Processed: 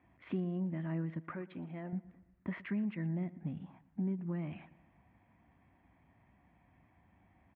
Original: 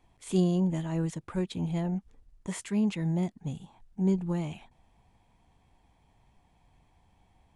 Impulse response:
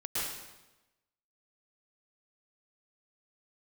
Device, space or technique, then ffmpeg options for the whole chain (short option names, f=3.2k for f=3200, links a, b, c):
bass amplifier: -filter_complex "[0:a]acompressor=threshold=-36dB:ratio=4,lowpass=4.2k,highpass=f=68:w=0.5412,highpass=f=68:w=1.3066,equalizer=f=80:t=q:w=4:g=-5,equalizer=f=130:t=q:w=4:g=-5,equalizer=f=270:t=q:w=4:g=3,equalizer=f=450:t=q:w=4:g=-9,equalizer=f=860:t=q:w=4:g=-8,equalizer=f=1.9k:t=q:w=4:g=4,lowpass=f=2.3k:w=0.5412,lowpass=f=2.3k:w=1.3066,asettb=1/sr,asplit=3[a][b][c];[a]atrim=end=1.224[d];[b]atrim=start=1.22:end=1.93,asetpts=PTS-STARTPTS,afade=t=in:d=0.004:c=qsin,afade=t=out:st=0.706:d=0.004:c=qsin,bass=f=250:g=-11,treble=f=4k:g=-3[e];[c]atrim=start=1.926[f];[d][e]acrossfade=d=0.004:c1=hsin:c2=qsin[g];[g][f]acrossfade=d=0.004:c1=qsin:c2=hsin,asplit=2[h][i];[i]adelay=117,lowpass=f=3.8k:p=1,volume=-18.5dB,asplit=2[j][k];[k]adelay=117,lowpass=f=3.8k:p=1,volume=0.48,asplit=2[l][m];[m]adelay=117,lowpass=f=3.8k:p=1,volume=0.48,asplit=2[n][o];[o]adelay=117,lowpass=f=3.8k:p=1,volume=0.48[p];[h][j][l][n][p]amix=inputs=5:normalize=0,volume=2dB"